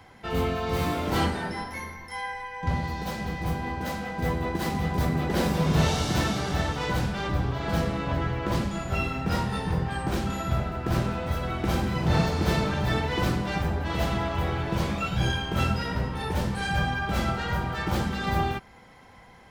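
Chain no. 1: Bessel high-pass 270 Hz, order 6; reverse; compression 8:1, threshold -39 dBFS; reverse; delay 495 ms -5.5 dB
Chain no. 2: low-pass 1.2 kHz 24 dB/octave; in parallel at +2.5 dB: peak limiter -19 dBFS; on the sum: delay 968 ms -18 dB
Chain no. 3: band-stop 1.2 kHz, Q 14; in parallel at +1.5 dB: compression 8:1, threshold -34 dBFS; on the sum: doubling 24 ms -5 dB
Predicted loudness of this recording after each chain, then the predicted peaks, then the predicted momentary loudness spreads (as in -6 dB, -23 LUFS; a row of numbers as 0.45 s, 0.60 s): -41.0 LUFS, -22.0 LUFS, -23.5 LUFS; -27.5 dBFS, -7.5 dBFS, -7.0 dBFS; 1 LU, 6 LU, 5 LU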